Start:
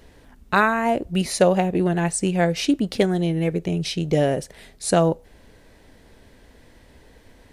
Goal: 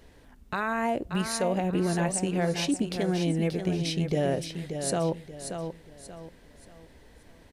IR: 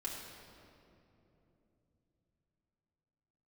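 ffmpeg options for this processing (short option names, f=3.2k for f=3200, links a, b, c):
-filter_complex "[0:a]alimiter=limit=-14.5dB:level=0:latency=1:release=67,asplit=2[a][b];[b]aecho=0:1:582|1164|1746|2328:0.422|0.143|0.0487|0.0166[c];[a][c]amix=inputs=2:normalize=0,volume=-4.5dB"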